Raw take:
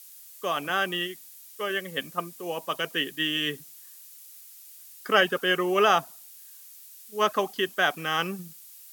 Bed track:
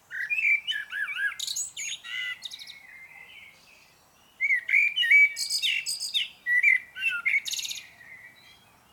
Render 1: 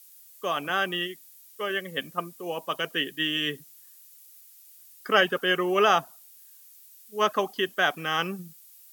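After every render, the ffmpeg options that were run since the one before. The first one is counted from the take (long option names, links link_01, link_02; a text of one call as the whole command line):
ffmpeg -i in.wav -af "afftdn=noise_reduction=6:noise_floor=-49" out.wav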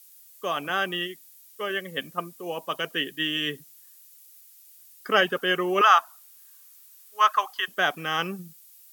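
ffmpeg -i in.wav -filter_complex "[0:a]asettb=1/sr,asplit=3[link_01][link_02][link_03];[link_01]atrim=end=5.814[link_04];[link_02]atrim=start=5.81:end=7.68,asetpts=PTS-STARTPTS,afade=type=in:duration=0.004:curve=qsin,afade=type=out:start_time=1.866:duration=0.004:curve=qsin,highpass=frequency=1100:width_type=q:width=2.3[link_05];[link_03]atrim=start=7.676[link_06];[link_04][link_05]acrossfade=duration=0.004:curve1=hsin:curve2=qsin[link_07];[link_07][link_06]acrossfade=duration=0.004:curve1=qsin:curve2=hsin" out.wav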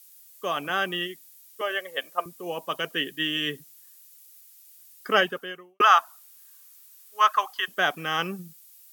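ffmpeg -i in.wav -filter_complex "[0:a]asettb=1/sr,asplit=3[link_01][link_02][link_03];[link_01]atrim=end=1.614[link_04];[link_02]atrim=start=1.61:end=2.26,asetpts=PTS-STARTPTS,afade=type=in:duration=0.004:curve=qsin,afade=type=out:start_time=0.646:duration=0.004:curve=qsin,highpass=frequency=620:width_type=q:width=1.8[link_05];[link_03]atrim=start=2.256[link_06];[link_04][link_05]acrossfade=duration=0.004:curve1=hsin:curve2=qsin[link_07];[link_07][link_06]acrossfade=duration=0.004:curve1=qsin:curve2=hsin,asplit=2[link_08][link_09];[link_08]atrim=end=5.8,asetpts=PTS-STARTPTS,afade=type=out:start_time=5.18:duration=0.62:curve=qua[link_10];[link_09]atrim=start=5.8,asetpts=PTS-STARTPTS,afade=type=in:duration=0.004:curve=hsin[link_11];[link_10][link_11]concat=n=2:v=0:a=1" out.wav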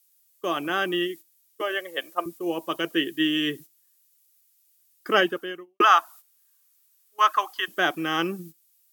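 ffmpeg -i in.wav -af "agate=range=-12dB:threshold=-44dB:ratio=16:detection=peak,equalizer=frequency=330:width_type=o:width=0.26:gain=15" out.wav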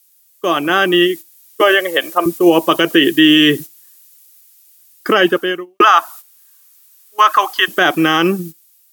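ffmpeg -i in.wav -af "dynaudnorm=framelen=480:gausssize=5:maxgain=11.5dB,alimiter=level_in=10.5dB:limit=-1dB:release=50:level=0:latency=1" out.wav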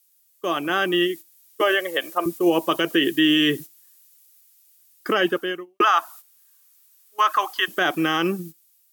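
ffmpeg -i in.wav -af "volume=-8.5dB" out.wav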